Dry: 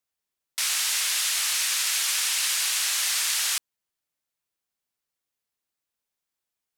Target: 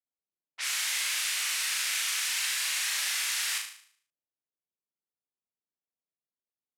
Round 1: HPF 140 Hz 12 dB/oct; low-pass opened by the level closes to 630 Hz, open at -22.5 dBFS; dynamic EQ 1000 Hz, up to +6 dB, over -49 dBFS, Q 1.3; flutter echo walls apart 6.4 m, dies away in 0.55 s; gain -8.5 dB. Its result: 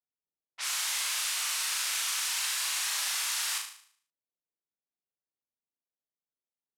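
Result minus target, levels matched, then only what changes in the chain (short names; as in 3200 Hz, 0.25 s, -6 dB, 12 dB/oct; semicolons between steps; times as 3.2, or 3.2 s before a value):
1000 Hz band +3.5 dB
change: dynamic EQ 2000 Hz, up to +6 dB, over -49 dBFS, Q 1.3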